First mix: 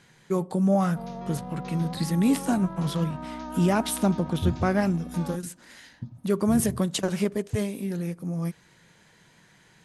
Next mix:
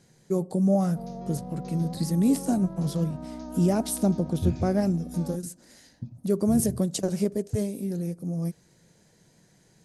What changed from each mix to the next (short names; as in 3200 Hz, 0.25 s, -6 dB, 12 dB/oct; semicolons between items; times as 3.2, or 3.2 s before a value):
second voice: remove Butterworth band-stop 2000 Hz, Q 0.68; master: add band shelf 1800 Hz -11 dB 2.3 oct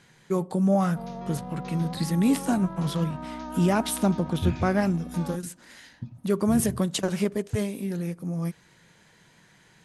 master: add band shelf 1800 Hz +11 dB 2.3 oct